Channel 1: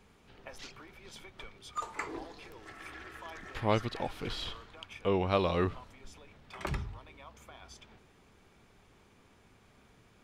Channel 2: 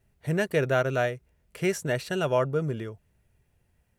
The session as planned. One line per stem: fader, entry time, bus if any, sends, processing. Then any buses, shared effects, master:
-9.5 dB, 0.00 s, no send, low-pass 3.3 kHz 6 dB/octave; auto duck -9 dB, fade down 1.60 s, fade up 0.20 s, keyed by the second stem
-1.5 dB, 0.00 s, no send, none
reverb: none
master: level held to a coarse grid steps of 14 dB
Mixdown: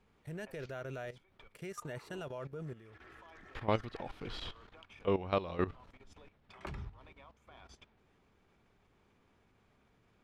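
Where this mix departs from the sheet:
stem 1 -9.5 dB -> -0.5 dB; stem 2 -1.5 dB -> -10.5 dB

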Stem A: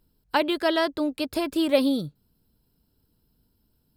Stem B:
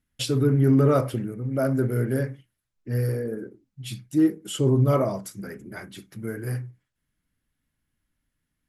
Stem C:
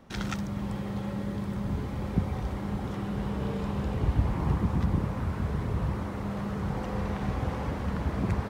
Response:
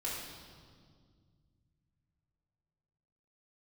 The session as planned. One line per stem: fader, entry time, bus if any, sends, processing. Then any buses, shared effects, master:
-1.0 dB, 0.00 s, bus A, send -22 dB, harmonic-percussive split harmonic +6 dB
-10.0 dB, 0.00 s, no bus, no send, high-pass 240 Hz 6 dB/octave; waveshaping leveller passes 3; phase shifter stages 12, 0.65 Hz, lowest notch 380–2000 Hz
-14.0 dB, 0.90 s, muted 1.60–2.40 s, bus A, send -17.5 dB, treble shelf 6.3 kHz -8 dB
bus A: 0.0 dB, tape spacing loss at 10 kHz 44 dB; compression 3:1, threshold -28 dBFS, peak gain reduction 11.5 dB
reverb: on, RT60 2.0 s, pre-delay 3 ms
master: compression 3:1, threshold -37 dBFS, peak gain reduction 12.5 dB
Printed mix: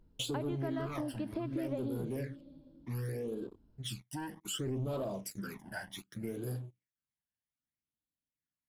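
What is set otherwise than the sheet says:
stem C: muted; reverb return -8.5 dB

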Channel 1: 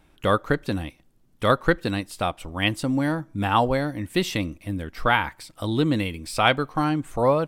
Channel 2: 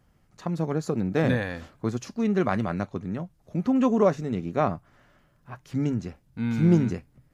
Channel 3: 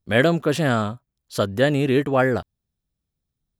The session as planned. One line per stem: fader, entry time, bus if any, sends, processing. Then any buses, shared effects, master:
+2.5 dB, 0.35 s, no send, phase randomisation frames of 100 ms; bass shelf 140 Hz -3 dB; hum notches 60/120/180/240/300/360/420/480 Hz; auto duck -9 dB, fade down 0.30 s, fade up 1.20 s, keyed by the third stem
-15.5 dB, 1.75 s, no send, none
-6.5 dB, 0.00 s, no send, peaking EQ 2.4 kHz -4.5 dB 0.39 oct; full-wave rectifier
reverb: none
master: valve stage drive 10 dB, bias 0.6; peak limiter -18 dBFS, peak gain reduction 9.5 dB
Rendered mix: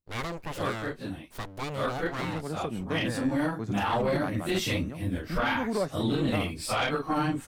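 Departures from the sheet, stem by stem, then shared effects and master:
stem 1: missing hum notches 60/120/180/240/300/360/420/480 Hz; stem 2 -15.5 dB -> -4.5 dB

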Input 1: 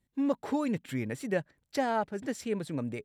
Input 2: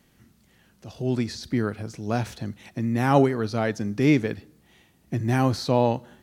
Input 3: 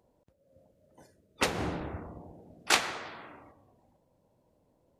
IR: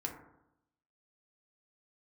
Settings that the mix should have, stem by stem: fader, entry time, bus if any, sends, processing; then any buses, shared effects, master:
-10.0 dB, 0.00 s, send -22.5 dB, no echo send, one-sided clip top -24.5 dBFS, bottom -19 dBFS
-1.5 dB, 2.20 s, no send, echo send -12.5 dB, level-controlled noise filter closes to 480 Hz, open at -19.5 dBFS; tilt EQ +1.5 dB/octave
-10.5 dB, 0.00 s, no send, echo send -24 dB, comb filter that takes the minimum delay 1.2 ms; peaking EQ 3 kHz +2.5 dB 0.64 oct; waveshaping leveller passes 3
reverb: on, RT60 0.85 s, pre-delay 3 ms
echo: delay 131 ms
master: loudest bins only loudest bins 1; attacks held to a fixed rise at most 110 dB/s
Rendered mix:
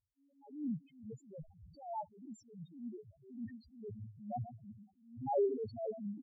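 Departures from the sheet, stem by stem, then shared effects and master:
stem 1 -10.0 dB -> -1.5 dB; stem 3 -10.5 dB -> -21.5 dB

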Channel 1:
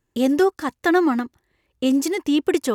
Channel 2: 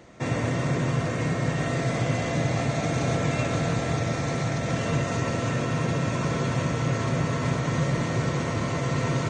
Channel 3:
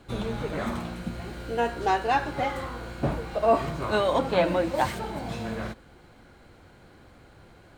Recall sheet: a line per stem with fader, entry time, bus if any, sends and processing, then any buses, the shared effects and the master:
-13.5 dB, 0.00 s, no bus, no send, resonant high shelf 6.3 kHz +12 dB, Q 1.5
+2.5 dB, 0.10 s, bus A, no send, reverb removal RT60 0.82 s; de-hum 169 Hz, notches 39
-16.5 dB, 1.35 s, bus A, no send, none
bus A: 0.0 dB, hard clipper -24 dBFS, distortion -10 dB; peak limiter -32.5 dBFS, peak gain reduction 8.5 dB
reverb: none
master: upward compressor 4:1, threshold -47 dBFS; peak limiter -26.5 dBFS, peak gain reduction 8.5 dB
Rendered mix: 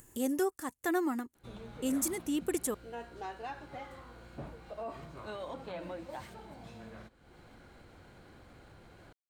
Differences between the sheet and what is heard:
stem 2: muted; master: missing peak limiter -26.5 dBFS, peak gain reduction 8.5 dB

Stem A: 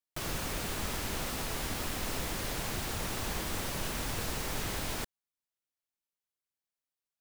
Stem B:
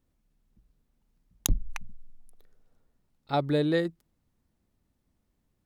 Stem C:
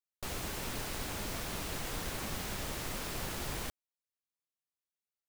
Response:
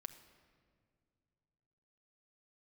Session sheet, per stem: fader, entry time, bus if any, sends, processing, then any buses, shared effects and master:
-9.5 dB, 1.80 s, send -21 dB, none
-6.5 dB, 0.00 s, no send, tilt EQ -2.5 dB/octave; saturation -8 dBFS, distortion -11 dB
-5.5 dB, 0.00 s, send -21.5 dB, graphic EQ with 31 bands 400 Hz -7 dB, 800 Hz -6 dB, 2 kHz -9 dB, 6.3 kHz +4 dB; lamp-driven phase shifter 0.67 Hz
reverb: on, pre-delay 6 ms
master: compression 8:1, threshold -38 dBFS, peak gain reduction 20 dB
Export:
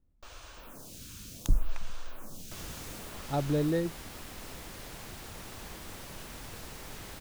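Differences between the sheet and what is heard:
stem A: entry 1.80 s -> 2.35 s; master: missing compression 8:1, threshold -38 dBFS, peak gain reduction 20 dB

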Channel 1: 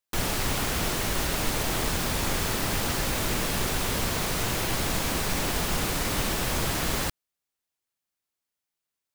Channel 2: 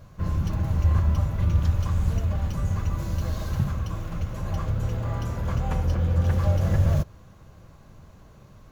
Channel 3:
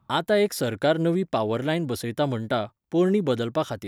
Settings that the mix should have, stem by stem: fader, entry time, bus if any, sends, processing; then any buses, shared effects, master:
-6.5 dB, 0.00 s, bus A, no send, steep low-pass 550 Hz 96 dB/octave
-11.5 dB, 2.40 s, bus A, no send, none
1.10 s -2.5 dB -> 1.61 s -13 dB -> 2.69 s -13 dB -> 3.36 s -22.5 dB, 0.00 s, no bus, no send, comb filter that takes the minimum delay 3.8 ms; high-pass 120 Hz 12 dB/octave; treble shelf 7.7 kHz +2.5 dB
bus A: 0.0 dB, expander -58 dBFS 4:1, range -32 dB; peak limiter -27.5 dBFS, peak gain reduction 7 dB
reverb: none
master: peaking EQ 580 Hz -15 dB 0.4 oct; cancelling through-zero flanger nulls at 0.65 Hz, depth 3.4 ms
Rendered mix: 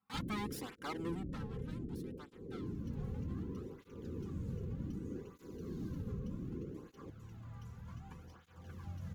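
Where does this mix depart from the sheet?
stem 2 -11.5 dB -> -18.5 dB; stem 3 -2.5 dB -> -12.0 dB

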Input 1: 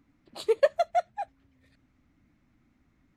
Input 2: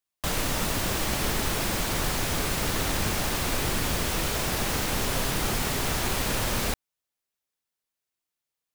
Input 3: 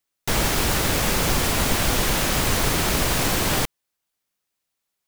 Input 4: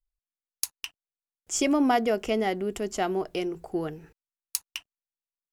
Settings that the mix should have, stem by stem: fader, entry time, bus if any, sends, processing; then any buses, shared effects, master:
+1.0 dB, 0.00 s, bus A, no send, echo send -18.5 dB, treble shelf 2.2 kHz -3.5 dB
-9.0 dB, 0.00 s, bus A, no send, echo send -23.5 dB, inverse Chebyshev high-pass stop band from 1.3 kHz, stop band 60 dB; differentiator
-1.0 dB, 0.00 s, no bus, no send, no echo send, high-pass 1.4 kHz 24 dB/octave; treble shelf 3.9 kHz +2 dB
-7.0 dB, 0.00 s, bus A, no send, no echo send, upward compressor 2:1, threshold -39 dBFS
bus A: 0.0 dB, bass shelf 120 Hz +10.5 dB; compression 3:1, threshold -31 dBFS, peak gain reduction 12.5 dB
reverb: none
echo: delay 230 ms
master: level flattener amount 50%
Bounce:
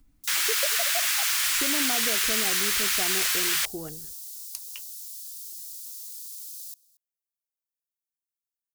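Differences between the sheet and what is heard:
stem 1 +1.0 dB -> -6.0 dB; master: missing level flattener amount 50%

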